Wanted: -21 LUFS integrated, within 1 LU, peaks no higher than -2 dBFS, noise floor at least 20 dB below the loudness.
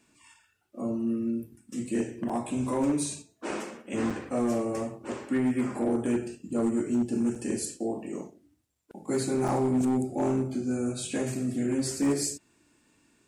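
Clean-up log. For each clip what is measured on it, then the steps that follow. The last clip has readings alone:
clipped samples 1.1%; clipping level -20.5 dBFS; dropouts 4; longest dropout 5.4 ms; loudness -29.5 LUFS; peak level -20.5 dBFS; loudness target -21.0 LUFS
-> clip repair -20.5 dBFS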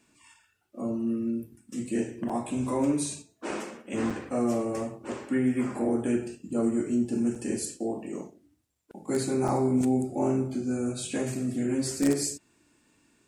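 clipped samples 0.0%; dropouts 4; longest dropout 5.4 ms
-> interpolate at 2.29/4.10/7.35/9.48 s, 5.4 ms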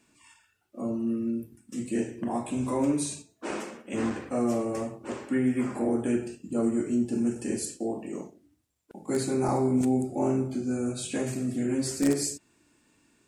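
dropouts 0; loudness -29.5 LUFS; peak level -11.5 dBFS; loudness target -21.0 LUFS
-> trim +8.5 dB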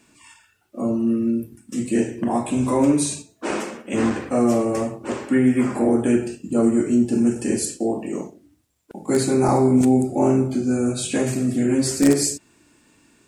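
loudness -21.0 LUFS; peak level -3.0 dBFS; noise floor -60 dBFS

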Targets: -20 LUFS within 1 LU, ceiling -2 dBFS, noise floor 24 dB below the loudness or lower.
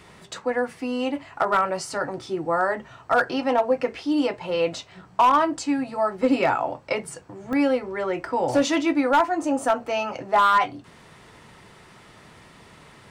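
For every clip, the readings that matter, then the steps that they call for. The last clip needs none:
clipped samples 0.5%; clipping level -12.0 dBFS; dropouts 1; longest dropout 1.1 ms; loudness -23.5 LUFS; peak level -12.0 dBFS; loudness target -20.0 LUFS
-> clip repair -12 dBFS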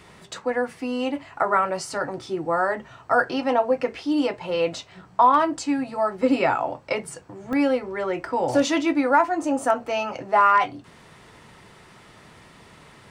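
clipped samples 0.0%; dropouts 1; longest dropout 1.1 ms
-> interpolate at 7.53 s, 1.1 ms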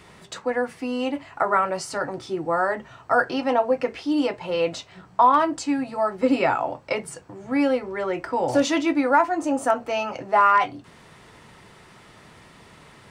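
dropouts 0; loudness -23.0 LUFS; peak level -5.5 dBFS; loudness target -20.0 LUFS
-> trim +3 dB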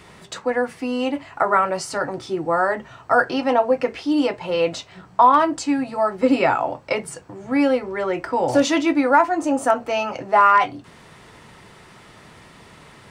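loudness -20.0 LUFS; peak level -2.5 dBFS; noise floor -47 dBFS

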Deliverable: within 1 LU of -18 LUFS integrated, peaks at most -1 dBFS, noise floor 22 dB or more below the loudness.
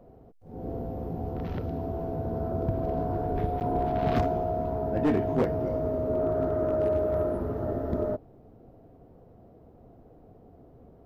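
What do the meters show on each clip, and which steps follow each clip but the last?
clipped samples 0.3%; clipping level -18.5 dBFS; dropouts 1; longest dropout 9.1 ms; loudness -29.0 LUFS; peak level -18.5 dBFS; loudness target -18.0 LUFS
-> clip repair -18.5 dBFS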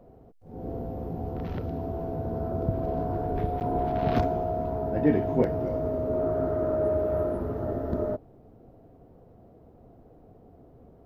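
clipped samples 0.0%; dropouts 1; longest dropout 9.1 ms
-> interpolate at 3.60 s, 9.1 ms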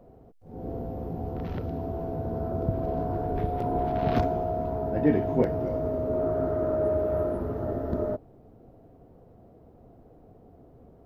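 dropouts 0; loudness -29.0 LUFS; peak level -10.0 dBFS; loudness target -18.0 LUFS
-> trim +11 dB; peak limiter -1 dBFS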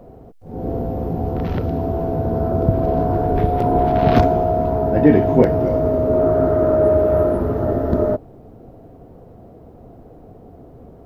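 loudness -18.0 LUFS; peak level -1.0 dBFS; noise floor -43 dBFS

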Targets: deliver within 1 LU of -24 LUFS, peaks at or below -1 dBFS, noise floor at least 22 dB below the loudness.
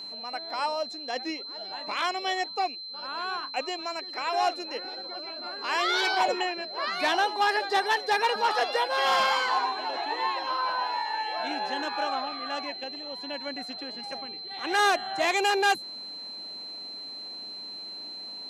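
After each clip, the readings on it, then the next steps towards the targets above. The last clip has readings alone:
steady tone 4.1 kHz; tone level -37 dBFS; loudness -28.5 LUFS; peak level -14.5 dBFS; loudness target -24.0 LUFS
-> band-stop 4.1 kHz, Q 30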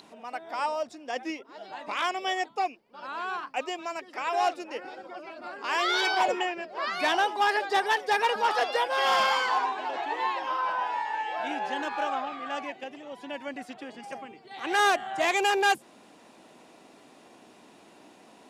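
steady tone not found; loudness -28.0 LUFS; peak level -15.0 dBFS; loudness target -24.0 LUFS
-> trim +4 dB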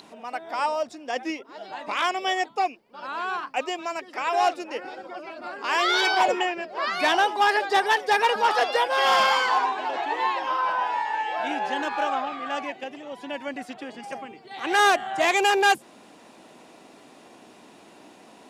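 loudness -24.0 LUFS; peak level -11.0 dBFS; noise floor -51 dBFS

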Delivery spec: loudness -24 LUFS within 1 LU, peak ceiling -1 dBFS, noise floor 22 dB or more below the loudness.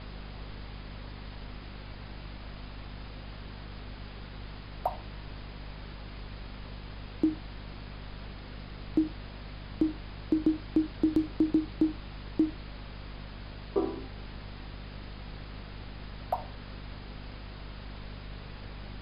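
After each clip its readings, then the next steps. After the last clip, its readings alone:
hum 50 Hz; highest harmonic 250 Hz; hum level -41 dBFS; noise floor -45 dBFS; noise floor target -59 dBFS; loudness -36.5 LUFS; peak level -15.0 dBFS; loudness target -24.0 LUFS
-> hum notches 50/100/150/200/250 Hz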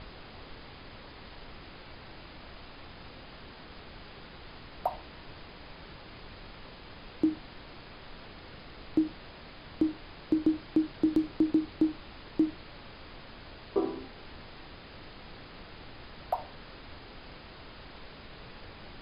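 hum not found; noise floor -49 dBFS; noise floor target -54 dBFS
-> noise print and reduce 6 dB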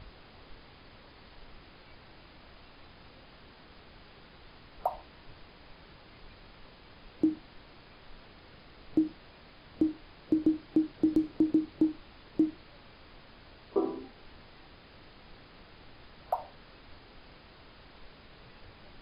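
noise floor -55 dBFS; loudness -31.5 LUFS; peak level -16.0 dBFS; loudness target -24.0 LUFS
-> trim +7.5 dB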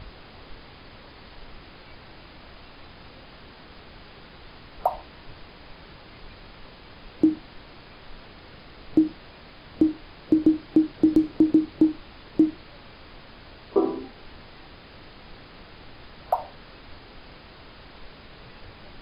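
loudness -24.0 LUFS; peak level -8.5 dBFS; noise floor -48 dBFS

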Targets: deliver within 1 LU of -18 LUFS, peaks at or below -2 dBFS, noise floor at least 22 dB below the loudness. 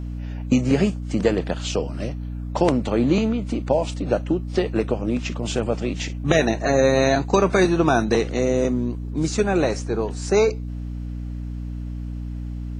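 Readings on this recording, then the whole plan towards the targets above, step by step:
hum 60 Hz; highest harmonic 300 Hz; hum level -27 dBFS; loudness -22.5 LUFS; peak level -3.5 dBFS; loudness target -18.0 LUFS
-> de-hum 60 Hz, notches 5; trim +4.5 dB; peak limiter -2 dBFS

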